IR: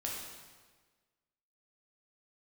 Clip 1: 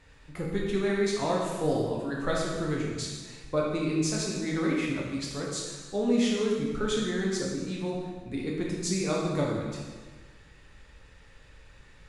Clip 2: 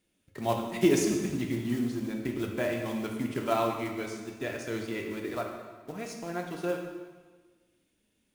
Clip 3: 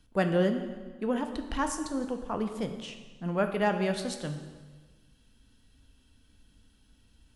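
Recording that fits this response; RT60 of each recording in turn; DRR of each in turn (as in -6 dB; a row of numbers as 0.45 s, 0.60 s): 1; 1.4 s, 1.4 s, 1.4 s; -3.5 dB, 1.5 dB, 6.0 dB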